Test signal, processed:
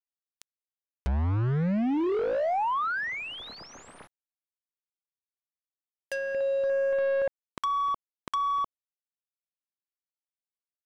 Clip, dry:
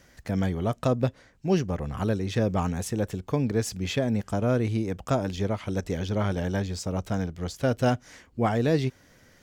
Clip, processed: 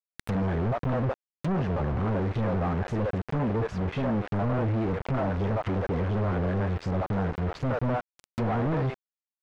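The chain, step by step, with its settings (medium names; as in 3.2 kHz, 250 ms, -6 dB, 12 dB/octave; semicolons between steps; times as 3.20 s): single-diode clipper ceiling -14.5 dBFS; treble shelf 10 kHz -5.5 dB; bands offset in time lows, highs 60 ms, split 490 Hz; companded quantiser 2-bit; low-pass that closes with the level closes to 1.4 kHz, closed at -25.5 dBFS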